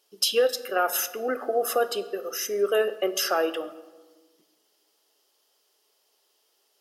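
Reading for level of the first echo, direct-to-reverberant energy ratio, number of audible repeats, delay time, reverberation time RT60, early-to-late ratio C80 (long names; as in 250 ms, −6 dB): no echo audible, 11.5 dB, no echo audible, no echo audible, 1.3 s, 16.0 dB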